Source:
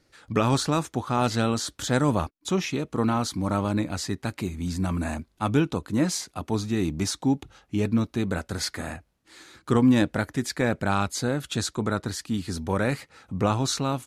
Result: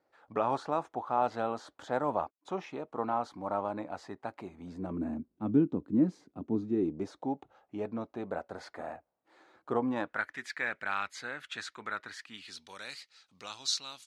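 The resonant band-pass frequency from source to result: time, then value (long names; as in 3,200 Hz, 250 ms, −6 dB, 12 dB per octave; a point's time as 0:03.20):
resonant band-pass, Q 2
0:04.58 760 Hz
0:05.12 270 Hz
0:06.51 270 Hz
0:07.37 690 Hz
0:09.88 690 Hz
0:10.28 1,900 Hz
0:12.25 1,900 Hz
0:12.73 4,500 Hz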